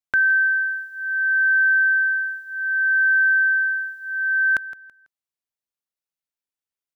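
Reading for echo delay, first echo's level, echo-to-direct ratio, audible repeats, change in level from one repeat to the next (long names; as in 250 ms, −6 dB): 165 ms, −16.0 dB, −15.5 dB, 2, −10.5 dB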